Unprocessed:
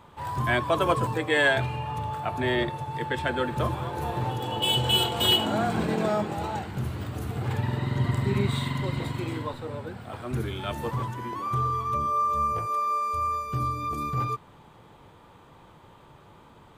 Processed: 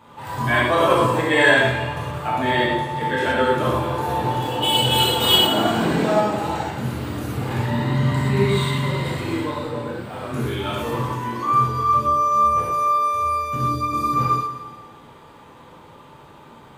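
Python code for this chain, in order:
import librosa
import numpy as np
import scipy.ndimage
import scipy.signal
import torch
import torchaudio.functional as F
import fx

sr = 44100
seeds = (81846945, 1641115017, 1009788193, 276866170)

y = fx.low_shelf(x, sr, hz=79.0, db=-10.5)
y = fx.echo_feedback(y, sr, ms=174, feedback_pct=41, wet_db=-12)
y = fx.rev_gated(y, sr, seeds[0], gate_ms=150, shape='flat', drr_db=-7.0)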